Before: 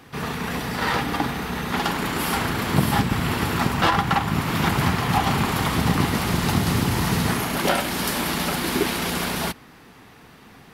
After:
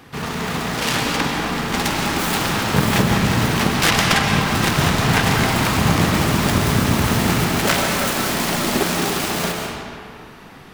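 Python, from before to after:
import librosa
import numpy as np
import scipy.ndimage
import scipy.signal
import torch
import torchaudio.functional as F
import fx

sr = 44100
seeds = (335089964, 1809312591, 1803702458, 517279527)

y = fx.self_delay(x, sr, depth_ms=0.81)
y = fx.rev_freeverb(y, sr, rt60_s=2.3, hf_ratio=0.7, predelay_ms=90, drr_db=0.5)
y = F.gain(torch.from_numpy(y), 3.0).numpy()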